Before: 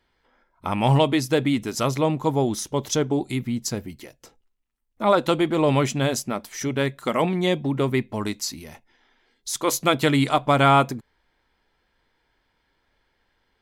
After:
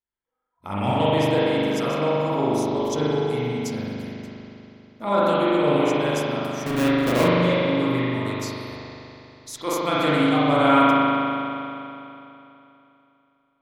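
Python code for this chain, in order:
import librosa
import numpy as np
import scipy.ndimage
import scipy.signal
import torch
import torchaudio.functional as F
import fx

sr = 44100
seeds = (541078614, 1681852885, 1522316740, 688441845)

y = fx.halfwave_hold(x, sr, at=(6.66, 7.28))
y = fx.noise_reduce_blind(y, sr, reduce_db=24)
y = fx.rev_spring(y, sr, rt60_s=3.0, pass_ms=(40,), chirp_ms=25, drr_db=-9.0)
y = F.gain(torch.from_numpy(y), -8.5).numpy()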